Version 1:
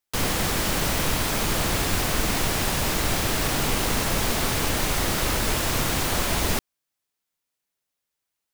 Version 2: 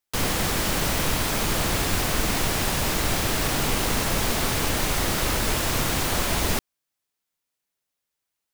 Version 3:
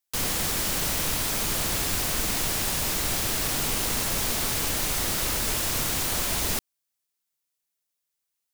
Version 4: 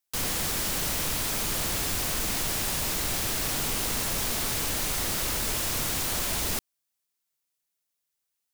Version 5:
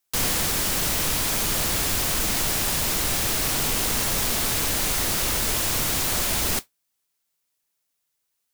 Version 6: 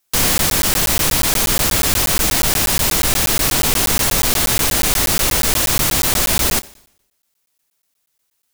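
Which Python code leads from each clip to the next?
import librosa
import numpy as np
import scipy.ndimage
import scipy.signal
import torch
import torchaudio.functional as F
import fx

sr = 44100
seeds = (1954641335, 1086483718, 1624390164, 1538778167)

y1 = x
y2 = fx.high_shelf(y1, sr, hz=3700.0, db=9.0)
y2 = y2 * 10.0 ** (-6.5 / 20.0)
y3 = 10.0 ** (-22.0 / 20.0) * np.tanh(y2 / 10.0 ** (-22.0 / 20.0))
y4 = fx.rider(y3, sr, range_db=10, speed_s=0.5)
y4 = fx.mod_noise(y4, sr, seeds[0], snr_db=10)
y4 = y4 * 10.0 ** (4.5 / 20.0)
y5 = fx.rev_schroeder(y4, sr, rt60_s=0.75, comb_ms=29, drr_db=19.0)
y5 = fx.buffer_crackle(y5, sr, first_s=0.38, period_s=0.12, block=512, kind='zero')
y5 = y5 * 10.0 ** (8.0 / 20.0)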